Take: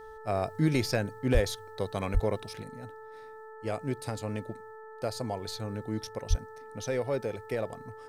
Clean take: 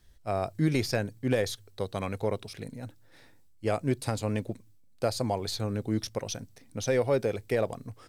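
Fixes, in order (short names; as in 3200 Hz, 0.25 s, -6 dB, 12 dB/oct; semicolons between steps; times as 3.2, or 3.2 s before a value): de-hum 438.1 Hz, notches 4; 1.33–1.45 HPF 140 Hz 24 dB/oct; 2.13–2.25 HPF 140 Hz 24 dB/oct; 6.29–6.41 HPF 140 Hz 24 dB/oct; gain 0 dB, from 2.62 s +5 dB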